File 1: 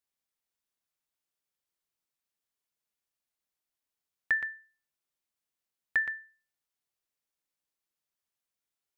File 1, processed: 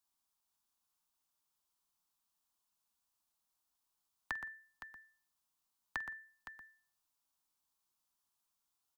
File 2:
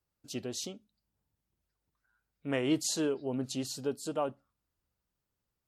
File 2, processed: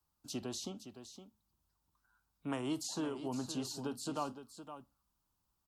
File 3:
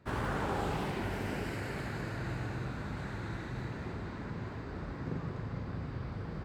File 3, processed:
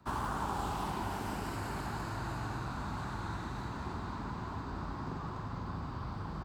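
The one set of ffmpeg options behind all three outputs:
ffmpeg -i in.wav -filter_complex "[0:a]acrossover=split=83|350|1600|5800[link_01][link_02][link_03][link_04][link_05];[link_01]acompressor=threshold=-47dB:ratio=4[link_06];[link_02]acompressor=threshold=-42dB:ratio=4[link_07];[link_03]acompressor=threshold=-40dB:ratio=4[link_08];[link_04]acompressor=threshold=-49dB:ratio=4[link_09];[link_05]acompressor=threshold=-56dB:ratio=4[link_10];[link_06][link_07][link_08][link_09][link_10]amix=inputs=5:normalize=0,equalizer=frequency=125:width_type=o:width=1:gain=-5,equalizer=frequency=500:width_type=o:width=1:gain=-11,equalizer=frequency=1000:width_type=o:width=1:gain=8,equalizer=frequency=2000:width_type=o:width=1:gain=-11,aecho=1:1:47|514:0.106|0.282,volume=4.5dB" out.wav

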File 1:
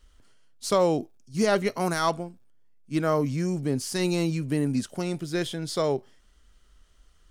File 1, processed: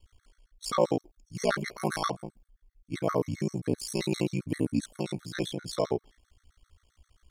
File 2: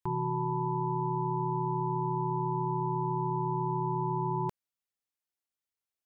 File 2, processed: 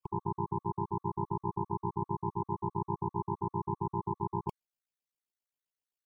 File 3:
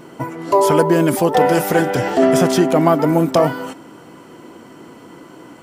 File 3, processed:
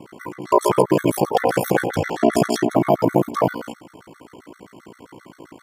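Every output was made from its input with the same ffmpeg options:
ffmpeg -i in.wav -af "aeval=exprs='val(0)*sin(2*PI*29*n/s)':channel_layout=same,afftfilt=real='re*gt(sin(2*PI*7.6*pts/sr)*(1-2*mod(floor(b*sr/1024/1100),2)),0)':imag='im*gt(sin(2*PI*7.6*pts/sr)*(1-2*mod(floor(b*sr/1024/1100),2)),0)':win_size=1024:overlap=0.75,volume=2dB" out.wav

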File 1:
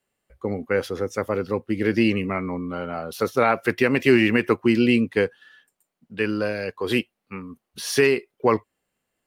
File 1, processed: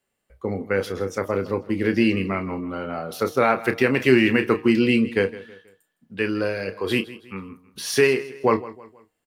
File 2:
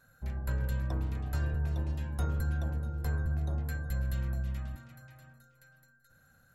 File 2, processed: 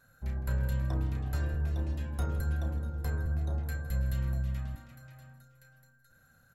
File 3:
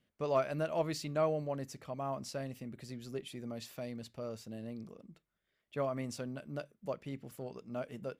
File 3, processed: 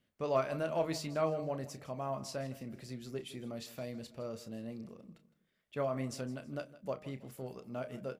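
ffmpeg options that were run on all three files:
ffmpeg -i in.wav -filter_complex "[0:a]asplit=2[link_01][link_02];[link_02]adelay=31,volume=-10.5dB[link_03];[link_01][link_03]amix=inputs=2:normalize=0,bandreject=frequency=154.1:width_type=h:width=4,bandreject=frequency=308.2:width_type=h:width=4,bandreject=frequency=462.3:width_type=h:width=4,bandreject=frequency=616.4:width_type=h:width=4,bandreject=frequency=770.5:width_type=h:width=4,bandreject=frequency=924.6:width_type=h:width=4,bandreject=frequency=1078.7:width_type=h:width=4,bandreject=frequency=1232.8:width_type=h:width=4,asplit=2[link_04][link_05];[link_05]aecho=0:1:161|322|483:0.133|0.052|0.0203[link_06];[link_04][link_06]amix=inputs=2:normalize=0" out.wav

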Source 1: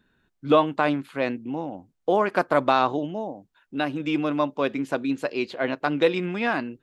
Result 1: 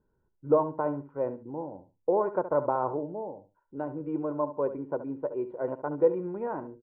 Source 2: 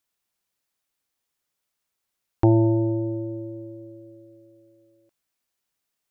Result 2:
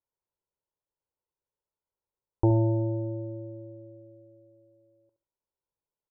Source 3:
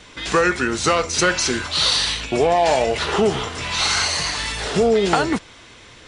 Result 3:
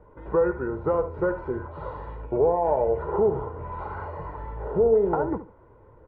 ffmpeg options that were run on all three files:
ffmpeg -i in.wav -af "lowpass=frequency=1000:width=0.5412,lowpass=frequency=1000:width=1.3066,aecho=1:1:2.1:0.56,aecho=1:1:70|140:0.237|0.0474,volume=-5.5dB" out.wav

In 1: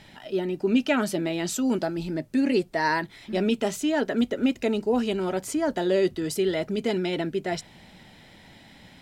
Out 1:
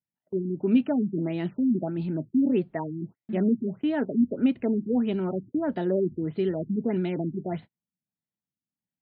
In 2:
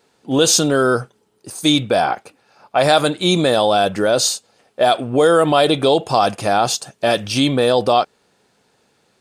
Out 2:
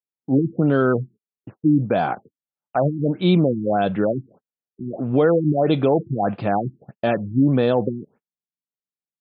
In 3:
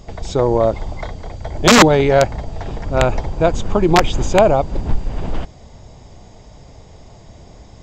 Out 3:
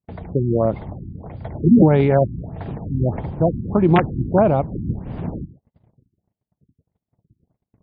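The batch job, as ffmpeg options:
ffmpeg -i in.wav -af "highpass=160,lowpass=7400,bass=frequency=250:gain=14,treble=frequency=4000:gain=-13,agate=range=-46dB:threshold=-33dB:ratio=16:detection=peak,afftfilt=real='re*lt(b*sr/1024,350*pow(5000/350,0.5+0.5*sin(2*PI*1.6*pts/sr)))':imag='im*lt(b*sr/1024,350*pow(5000/350,0.5+0.5*sin(2*PI*1.6*pts/sr)))':win_size=1024:overlap=0.75,volume=-5dB" out.wav

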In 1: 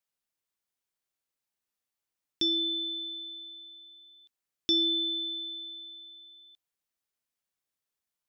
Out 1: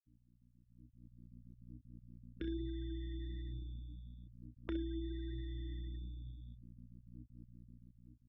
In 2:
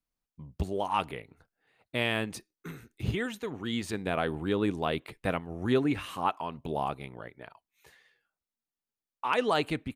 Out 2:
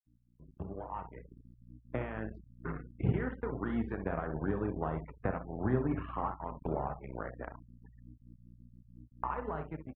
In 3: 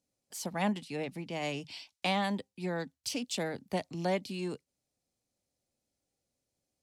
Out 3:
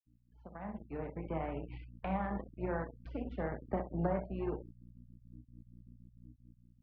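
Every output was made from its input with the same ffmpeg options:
ffmpeg -i in.wav -filter_complex "[0:a]lowshelf=frequency=220:gain=-10.5,aeval=exprs='val(0)+0.00282*(sin(2*PI*60*n/s)+sin(2*PI*2*60*n/s)/2+sin(2*PI*3*60*n/s)/3+sin(2*PI*4*60*n/s)/4+sin(2*PI*5*60*n/s)/5)':channel_layout=same,flanger=delay=6.7:depth=6.1:regen=77:speed=1.1:shape=triangular,acrossover=split=150[link_01][link_02];[link_02]acompressor=threshold=-46dB:ratio=10[link_03];[link_01][link_03]amix=inputs=2:normalize=0,equalizer=frequency=150:width=5:gain=3.5,asplit=2[link_04][link_05];[link_05]adelay=31,volume=-8dB[link_06];[link_04][link_06]amix=inputs=2:normalize=0,aecho=1:1:64|128|192|256:0.398|0.139|0.0488|0.0171,aresample=16000,aeval=exprs='sgn(val(0))*max(abs(val(0))-0.00224,0)':channel_layout=same,aresample=44100,afftfilt=real='re*gte(hypot(re,im),0.00178)':imag='im*gte(hypot(re,im),0.00178)':win_size=1024:overlap=0.75,dynaudnorm=framelen=290:gausssize=7:maxgain=15dB,lowpass=frequency=1600:width=0.5412,lowpass=frequency=1600:width=1.3066" out.wav

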